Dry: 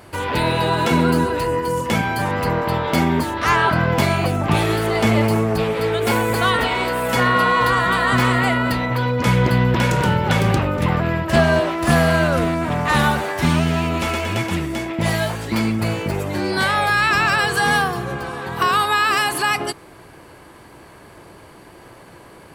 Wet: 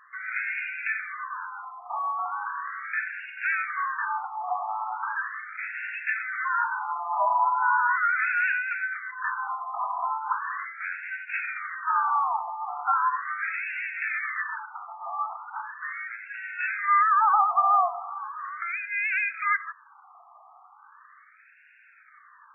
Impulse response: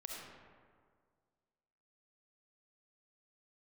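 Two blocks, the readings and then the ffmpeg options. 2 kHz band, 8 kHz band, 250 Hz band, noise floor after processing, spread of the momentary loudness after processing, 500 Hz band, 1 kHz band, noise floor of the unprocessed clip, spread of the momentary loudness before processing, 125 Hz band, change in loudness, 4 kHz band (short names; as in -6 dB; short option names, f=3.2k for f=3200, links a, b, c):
-6.5 dB, under -40 dB, under -40 dB, -55 dBFS, 13 LU, -23.5 dB, -5.0 dB, -44 dBFS, 6 LU, under -40 dB, -9.0 dB, under -35 dB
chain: -af "afreqshift=-450,afftfilt=real='re*between(b*sr/1024,910*pow(2000/910,0.5+0.5*sin(2*PI*0.38*pts/sr))/1.41,910*pow(2000/910,0.5+0.5*sin(2*PI*0.38*pts/sr))*1.41)':imag='im*between(b*sr/1024,910*pow(2000/910,0.5+0.5*sin(2*PI*0.38*pts/sr))/1.41,910*pow(2000/910,0.5+0.5*sin(2*PI*0.38*pts/sr))*1.41)':win_size=1024:overlap=0.75"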